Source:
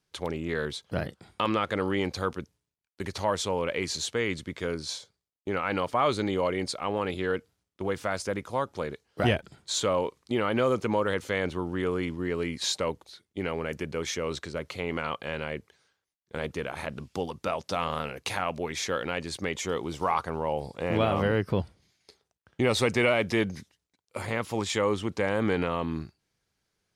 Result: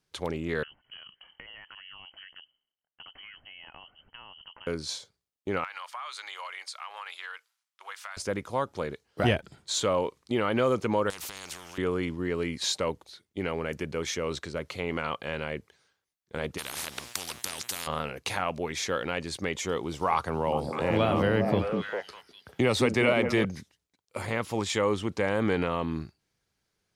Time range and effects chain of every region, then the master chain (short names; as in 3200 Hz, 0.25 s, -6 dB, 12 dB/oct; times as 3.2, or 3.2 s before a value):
0.63–4.67 bell 550 Hz -14 dB 0.97 oct + compressor 12:1, threshold -43 dBFS + inverted band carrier 3100 Hz
5.64–8.17 HPF 1000 Hz 24 dB/oct + compressor 12:1, threshold -34 dBFS
11.1–11.78 ripple EQ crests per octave 0.76, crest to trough 8 dB + compressor 2.5:1, threshold -34 dBFS + spectral compressor 10:1
16.57–17.86 tilt +3 dB/oct + buzz 120 Hz, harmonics 34, -65 dBFS -1 dB/oct + spectral compressor 10:1
20.12–23.45 delay with a stepping band-pass 0.201 s, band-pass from 240 Hz, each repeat 1.4 oct, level -1 dB + three-band squash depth 40%
whole clip: dry